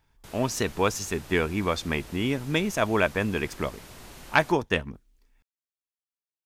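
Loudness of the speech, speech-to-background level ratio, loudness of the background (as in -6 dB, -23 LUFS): -27.0 LUFS, 19.0 dB, -46.0 LUFS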